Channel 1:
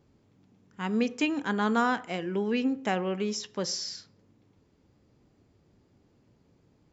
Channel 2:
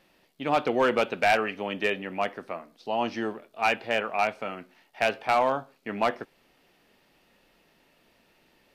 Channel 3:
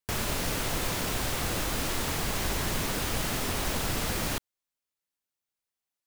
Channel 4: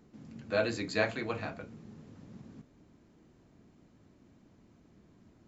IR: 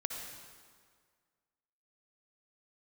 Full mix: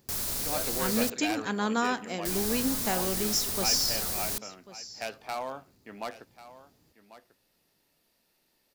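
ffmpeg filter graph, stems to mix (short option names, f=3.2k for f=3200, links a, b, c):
-filter_complex "[0:a]volume=-2.5dB,asplit=2[a][b];[b]volume=-17dB[c];[1:a]volume=-12dB,asplit=2[d][e];[e]volume=-15.5dB[f];[2:a]volume=-9.5dB,asplit=3[g][h][i];[g]atrim=end=1.1,asetpts=PTS-STARTPTS,afade=t=out:st=1.096:d=0.004:c=hsin[j];[h]atrim=start=1.1:end=2.25,asetpts=PTS-STARTPTS,volume=0[k];[i]atrim=start=2.25,asetpts=PTS-STARTPTS,afade=t=in:d=0.004:c=hsin[l];[j][k][l]concat=n=3:v=0:a=1[m];[3:a]volume=-10dB[n];[c][f]amix=inputs=2:normalize=0,aecho=0:1:1093:1[o];[a][d][m][n][o]amix=inputs=5:normalize=0,aexciter=amount=4.3:drive=2.3:freq=4k"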